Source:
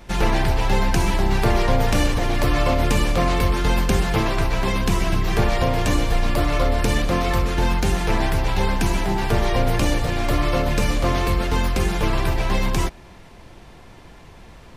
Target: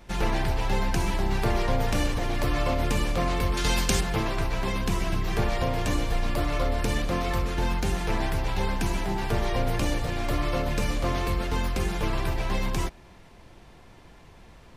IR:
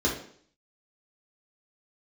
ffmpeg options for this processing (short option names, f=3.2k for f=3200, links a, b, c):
-filter_complex "[0:a]asettb=1/sr,asplit=3[a][b][c];[a]atrim=end=3.574[d];[b]atrim=start=3.57:end=4.01,asetpts=PTS-STARTPTS,afade=t=in:d=0.004:c=qsin,afade=t=out:st=0.436:d=0.004:c=qsin,equalizer=f=6.6k:w=0.39:g=11.5[e];[c]atrim=start=4.006[f];[d][e]acrossfade=d=0.004:c1=hsin:c2=qsin[g];[g][f]acrossfade=d=0.004:c1=qsin:c2=hsin,volume=-6.5dB"